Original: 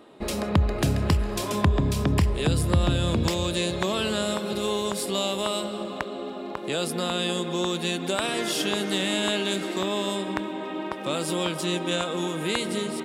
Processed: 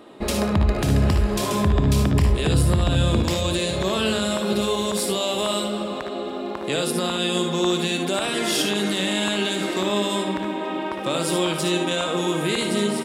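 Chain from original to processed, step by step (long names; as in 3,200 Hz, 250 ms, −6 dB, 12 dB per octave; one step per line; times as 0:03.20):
brickwall limiter −17 dBFS, peak gain reduction 9 dB
on a send: ambience of single reflections 59 ms −8 dB, 73 ms −8.5 dB
on the sum: level +4.5 dB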